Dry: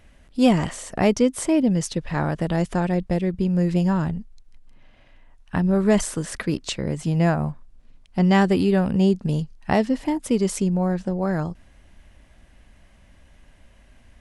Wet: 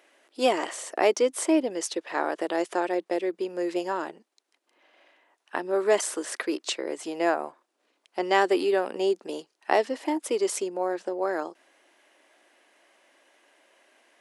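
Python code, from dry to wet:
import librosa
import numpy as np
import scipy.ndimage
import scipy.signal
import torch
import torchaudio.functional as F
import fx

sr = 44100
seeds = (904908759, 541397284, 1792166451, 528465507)

y = scipy.signal.sosfilt(scipy.signal.ellip(4, 1.0, 80, 330.0, 'highpass', fs=sr, output='sos'), x)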